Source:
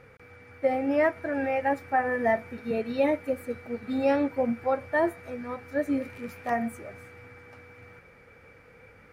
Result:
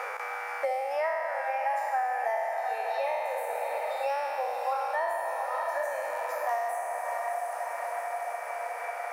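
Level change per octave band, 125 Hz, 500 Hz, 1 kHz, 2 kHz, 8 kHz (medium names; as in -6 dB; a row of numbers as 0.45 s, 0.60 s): under -40 dB, -3.5 dB, +3.5 dB, -0.5 dB, no reading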